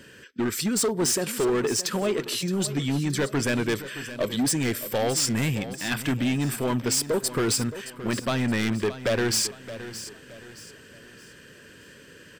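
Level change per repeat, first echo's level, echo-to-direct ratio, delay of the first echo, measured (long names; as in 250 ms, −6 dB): −8.5 dB, −13.5 dB, −13.0 dB, 620 ms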